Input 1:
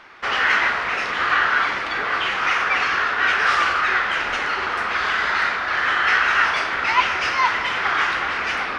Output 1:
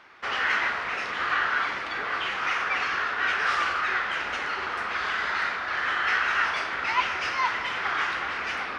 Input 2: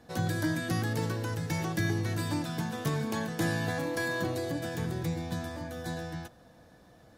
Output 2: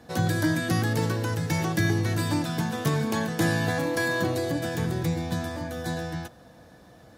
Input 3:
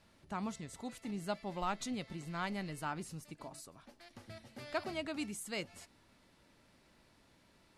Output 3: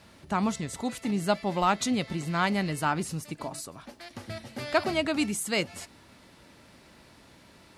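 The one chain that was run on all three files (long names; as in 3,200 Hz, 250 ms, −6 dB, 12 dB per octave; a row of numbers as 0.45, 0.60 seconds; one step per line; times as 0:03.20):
high-pass filter 45 Hz
normalise the peak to −12 dBFS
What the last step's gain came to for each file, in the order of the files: −7.0, +5.5, +12.5 decibels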